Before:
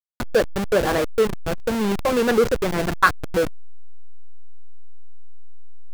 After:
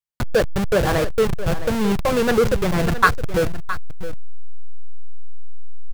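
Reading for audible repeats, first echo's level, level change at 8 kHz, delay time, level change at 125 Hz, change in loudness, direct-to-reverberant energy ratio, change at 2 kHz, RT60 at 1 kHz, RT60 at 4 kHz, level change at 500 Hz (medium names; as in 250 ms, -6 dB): 1, -13.0 dB, +1.0 dB, 665 ms, +7.0 dB, +1.0 dB, no reverb, +1.0 dB, no reverb, no reverb, +0.5 dB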